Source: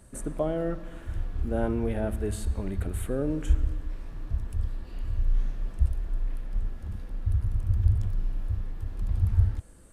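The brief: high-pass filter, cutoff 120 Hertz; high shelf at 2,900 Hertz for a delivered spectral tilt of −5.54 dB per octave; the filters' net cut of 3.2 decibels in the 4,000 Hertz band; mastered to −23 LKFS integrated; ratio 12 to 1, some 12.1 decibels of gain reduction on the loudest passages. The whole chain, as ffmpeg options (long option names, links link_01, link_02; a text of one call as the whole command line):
ffmpeg -i in.wav -af "highpass=120,highshelf=frequency=2900:gain=4,equalizer=frequency=4000:width_type=o:gain=-7.5,acompressor=threshold=-36dB:ratio=12,volume=20.5dB" out.wav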